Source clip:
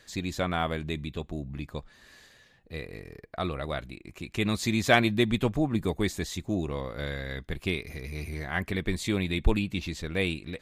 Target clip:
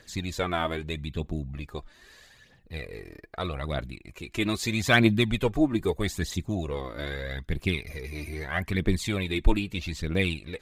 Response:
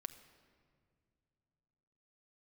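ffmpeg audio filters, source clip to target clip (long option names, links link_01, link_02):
-af "aphaser=in_gain=1:out_gain=1:delay=3.4:decay=0.53:speed=0.79:type=triangular"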